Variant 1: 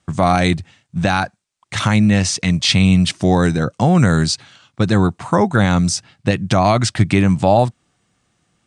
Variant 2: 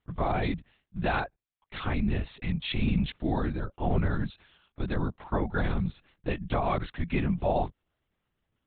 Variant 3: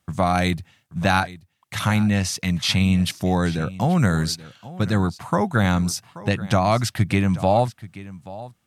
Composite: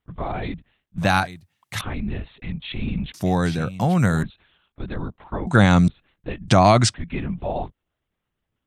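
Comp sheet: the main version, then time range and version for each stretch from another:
2
0:00.98–0:01.81: punch in from 3
0:03.14–0:04.23: punch in from 3
0:05.47–0:05.88: punch in from 1
0:06.48–0:06.94: punch in from 1

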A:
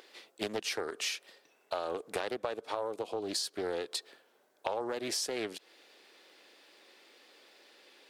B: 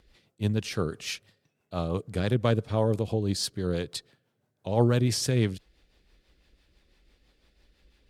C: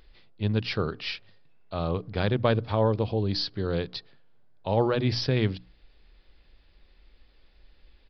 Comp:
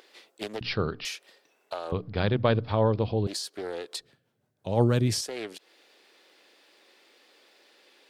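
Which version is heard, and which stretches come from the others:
A
0:00.61–0:01.05: punch in from C
0:01.92–0:03.27: punch in from C
0:04.00–0:05.21: punch in from B

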